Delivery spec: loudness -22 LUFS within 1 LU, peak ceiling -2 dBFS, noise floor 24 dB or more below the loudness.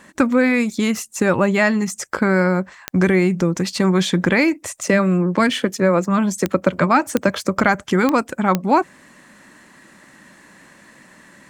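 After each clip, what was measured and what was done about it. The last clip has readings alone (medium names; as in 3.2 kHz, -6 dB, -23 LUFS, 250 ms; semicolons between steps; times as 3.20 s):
clicks found 5; loudness -18.5 LUFS; peak level -2.0 dBFS; loudness target -22.0 LUFS
-> de-click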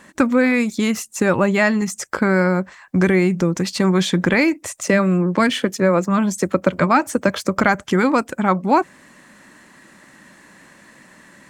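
clicks found 0; loudness -18.5 LUFS; peak level -2.0 dBFS; loudness target -22.0 LUFS
-> trim -3.5 dB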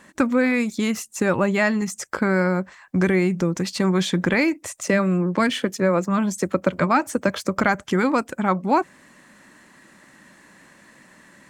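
loudness -22.0 LUFS; peak level -5.5 dBFS; noise floor -53 dBFS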